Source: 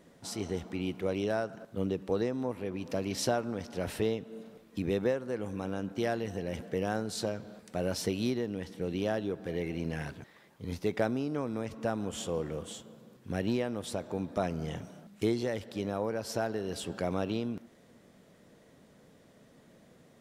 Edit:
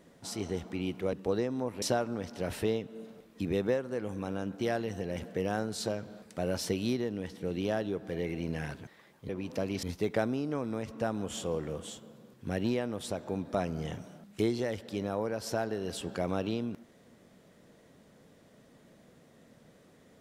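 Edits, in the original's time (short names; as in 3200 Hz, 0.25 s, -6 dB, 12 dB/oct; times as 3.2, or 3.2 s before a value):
1.13–1.96 cut
2.65–3.19 move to 10.66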